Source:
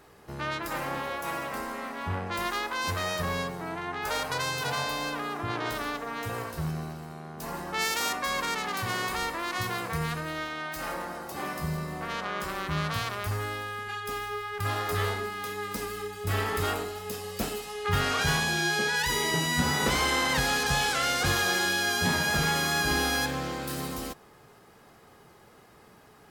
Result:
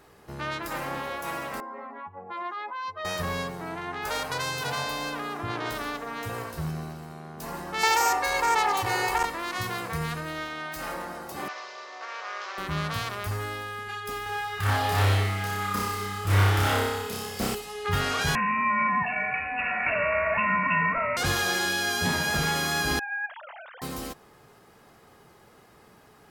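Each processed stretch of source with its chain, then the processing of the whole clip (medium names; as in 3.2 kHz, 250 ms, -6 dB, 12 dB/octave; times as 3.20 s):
1.60–3.05 s: spectral contrast enhancement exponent 2.2 + band-pass 380–6000 Hz + peaking EQ 1.5 kHz -7 dB 0.64 oct
7.83–9.25 s: peaking EQ 850 Hz +10 dB 0.81 oct + comb 2.3 ms, depth 98% + transformer saturation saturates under 950 Hz
11.48–12.58 s: CVSD coder 32 kbps + Bessel high-pass 690 Hz, order 6
14.23–17.55 s: flutter echo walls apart 5.2 m, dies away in 1.1 s + loudspeaker Doppler distortion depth 0.36 ms
18.35–21.17 s: bass shelf 390 Hz -5 dB + comb 2.4 ms, depth 81% + frequency inversion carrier 2.7 kHz
22.99–23.82 s: formants replaced by sine waves + band-pass filter 1.5 kHz, Q 0.86 + compression 1.5:1, threshold -39 dBFS
whole clip: none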